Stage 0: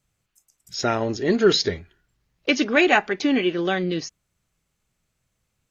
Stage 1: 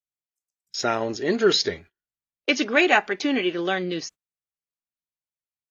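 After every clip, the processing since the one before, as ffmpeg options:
-af "agate=range=-27dB:threshold=-40dB:ratio=16:detection=peak,lowshelf=f=180:g=-11.5"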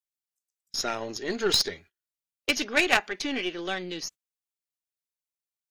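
-af "highshelf=f=2.5k:g=10,aeval=exprs='1*(cos(1*acos(clip(val(0)/1,-1,1)))-cos(1*PI/2))+0.398*(cos(2*acos(clip(val(0)/1,-1,1)))-cos(2*PI/2))+0.126*(cos(3*acos(clip(val(0)/1,-1,1)))-cos(3*PI/2))+0.0355*(cos(5*acos(clip(val(0)/1,-1,1)))-cos(5*PI/2))+0.0708*(cos(8*acos(clip(val(0)/1,-1,1)))-cos(8*PI/2))':c=same,volume=-6.5dB"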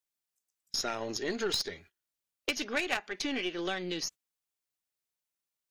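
-af "acompressor=threshold=-35dB:ratio=3,volume=3dB"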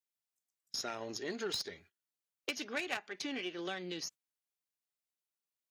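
-af "highpass=f=84:w=0.5412,highpass=f=84:w=1.3066,volume=-6dB"

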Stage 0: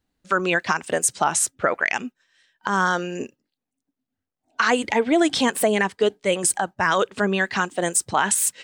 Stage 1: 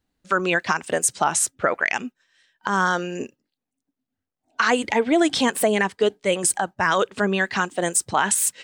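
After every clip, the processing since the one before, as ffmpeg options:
-af anull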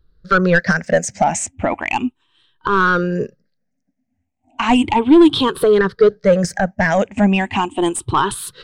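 -af "afftfilt=real='re*pow(10,18/40*sin(2*PI*(0.61*log(max(b,1)*sr/1024/100)/log(2)-(0.35)*(pts-256)/sr)))':imag='im*pow(10,18/40*sin(2*PI*(0.61*log(max(b,1)*sr/1024/100)/log(2)-(0.35)*(pts-256)/sr)))':win_size=1024:overlap=0.75,acontrast=88,aemphasis=mode=reproduction:type=bsi,volume=-4.5dB"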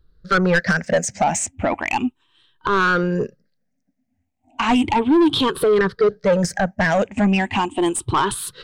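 -af "asoftclip=type=tanh:threshold=-11dB"

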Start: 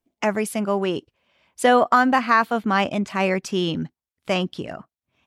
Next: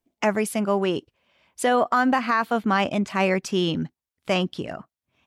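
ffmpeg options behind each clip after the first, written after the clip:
-af "alimiter=limit=-11dB:level=0:latency=1:release=78"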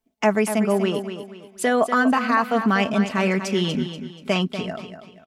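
-filter_complex "[0:a]aecho=1:1:4.6:0.53,asplit=2[a][b];[b]aecho=0:1:241|482|723|964:0.335|0.117|0.041|0.0144[c];[a][c]amix=inputs=2:normalize=0"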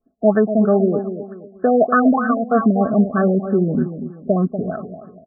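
-af "asuperstop=centerf=940:order=12:qfactor=4.3,afftfilt=real='re*lt(b*sr/1024,690*pow(1800/690,0.5+0.5*sin(2*PI*3.2*pts/sr)))':imag='im*lt(b*sr/1024,690*pow(1800/690,0.5+0.5*sin(2*PI*3.2*pts/sr)))':win_size=1024:overlap=0.75,volume=5.5dB"

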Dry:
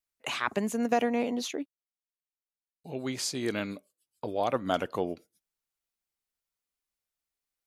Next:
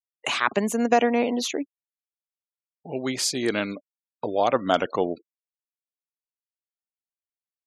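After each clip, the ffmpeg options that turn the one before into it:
-af "highpass=f=200:p=1,afftfilt=real='re*gte(hypot(re,im),0.00398)':imag='im*gte(hypot(re,im),0.00398)':win_size=1024:overlap=0.75,volume=7.5dB"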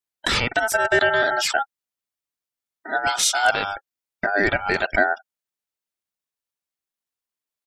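-af "alimiter=limit=-14dB:level=0:latency=1:release=43,aecho=1:1:2.5:0.71,aeval=exprs='val(0)*sin(2*PI*1100*n/s)':c=same,volume=7dB"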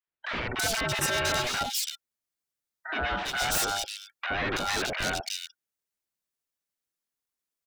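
-filter_complex "[0:a]alimiter=limit=-9dB:level=0:latency=1:release=425,aeval=exprs='0.0841*(abs(mod(val(0)/0.0841+3,4)-2)-1)':c=same,acrossover=split=860|3000[a][b][c];[a]adelay=70[d];[c]adelay=330[e];[d][b][e]amix=inputs=3:normalize=0,volume=1dB"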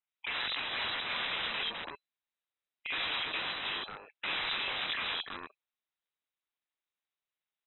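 -af "tremolo=f=160:d=0.621,aeval=exprs='(mod(26.6*val(0)+1,2)-1)/26.6':c=same,lowpass=f=3.4k:t=q:w=0.5098,lowpass=f=3.4k:t=q:w=0.6013,lowpass=f=3.4k:t=q:w=0.9,lowpass=f=3.4k:t=q:w=2.563,afreqshift=-4000,volume=2.5dB"

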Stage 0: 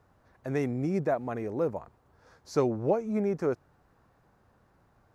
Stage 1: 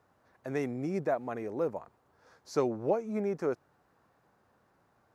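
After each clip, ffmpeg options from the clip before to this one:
-af "highpass=f=230:p=1,volume=-1.5dB"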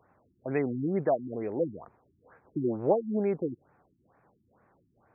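-af "afftfilt=real='re*lt(b*sr/1024,340*pow(2700/340,0.5+0.5*sin(2*PI*2.2*pts/sr)))':imag='im*lt(b*sr/1024,340*pow(2700/340,0.5+0.5*sin(2*PI*2.2*pts/sr)))':win_size=1024:overlap=0.75,volume=4dB"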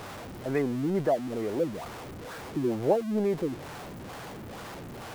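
-af "aeval=exprs='val(0)+0.5*0.0168*sgn(val(0))':c=same"

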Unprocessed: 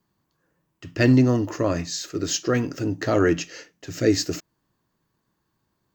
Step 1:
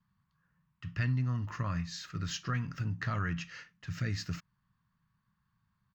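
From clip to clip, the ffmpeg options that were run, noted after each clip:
-af "firequalizer=gain_entry='entry(190,0);entry(310,-25);entry(660,-18);entry(1100,-2);entry(7200,-18)':delay=0.05:min_phase=1,acompressor=threshold=-31dB:ratio=3"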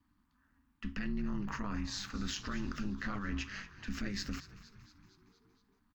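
-filter_complex "[0:a]alimiter=level_in=8dB:limit=-24dB:level=0:latency=1:release=27,volume=-8dB,aeval=exprs='val(0)*sin(2*PI*100*n/s)':c=same,asplit=7[a][b][c][d][e][f][g];[b]adelay=232,afreqshift=-77,volume=-16dB[h];[c]adelay=464,afreqshift=-154,volume=-20.2dB[i];[d]adelay=696,afreqshift=-231,volume=-24.3dB[j];[e]adelay=928,afreqshift=-308,volume=-28.5dB[k];[f]adelay=1160,afreqshift=-385,volume=-32.6dB[l];[g]adelay=1392,afreqshift=-462,volume=-36.8dB[m];[a][h][i][j][k][l][m]amix=inputs=7:normalize=0,volume=5.5dB"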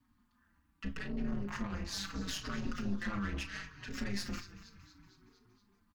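-filter_complex "[0:a]aeval=exprs='(tanh(56.2*val(0)+0.5)-tanh(0.5))/56.2':c=same,asplit=2[a][b];[b]adelay=35,volume=-11.5dB[c];[a][c]amix=inputs=2:normalize=0,asplit=2[d][e];[e]adelay=5,afreqshift=-0.75[f];[d][f]amix=inputs=2:normalize=1,volume=6.5dB"

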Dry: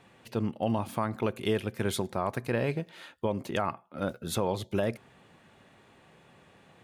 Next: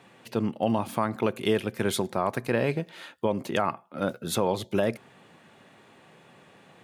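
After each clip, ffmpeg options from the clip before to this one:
-af "highpass=130,volume=4dB"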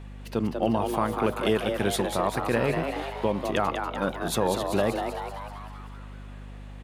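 -filter_complex "[0:a]asplit=9[a][b][c][d][e][f][g][h][i];[b]adelay=193,afreqshift=130,volume=-6dB[j];[c]adelay=386,afreqshift=260,volume=-10.7dB[k];[d]adelay=579,afreqshift=390,volume=-15.5dB[l];[e]adelay=772,afreqshift=520,volume=-20.2dB[m];[f]adelay=965,afreqshift=650,volume=-24.9dB[n];[g]adelay=1158,afreqshift=780,volume=-29.7dB[o];[h]adelay=1351,afreqshift=910,volume=-34.4dB[p];[i]adelay=1544,afreqshift=1040,volume=-39.1dB[q];[a][j][k][l][m][n][o][p][q]amix=inputs=9:normalize=0,aeval=exprs='val(0)+0.01*(sin(2*PI*50*n/s)+sin(2*PI*2*50*n/s)/2+sin(2*PI*3*50*n/s)/3+sin(2*PI*4*50*n/s)/4+sin(2*PI*5*50*n/s)/5)':c=same"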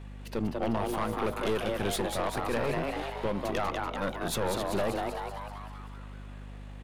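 -af "aeval=exprs='(tanh(15.8*val(0)+0.5)-tanh(0.5))/15.8':c=same"

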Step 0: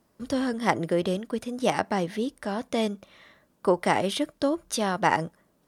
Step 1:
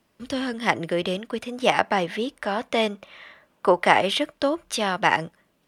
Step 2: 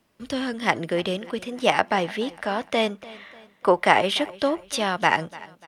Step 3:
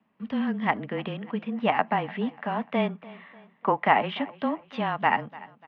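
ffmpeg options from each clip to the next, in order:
-filter_complex "[0:a]equalizer=f=2.7k:w=1.1:g=10.5,acrossover=split=490|1700[a][b][c];[b]dynaudnorm=f=260:g=9:m=11.5dB[d];[a][d][c]amix=inputs=3:normalize=0,volume=-1.5dB"
-af "aecho=1:1:295|590|885:0.1|0.045|0.0202"
-af "highpass=230,equalizer=f=240:t=q:w=4:g=8,equalizer=f=370:t=q:w=4:g=-10,equalizer=f=560:t=q:w=4:g=-9,equalizer=f=1.5k:t=q:w=4:g=-7,equalizer=f=2.2k:t=q:w=4:g=-4,lowpass=f=2.4k:w=0.5412,lowpass=f=2.4k:w=1.3066,afreqshift=-22"

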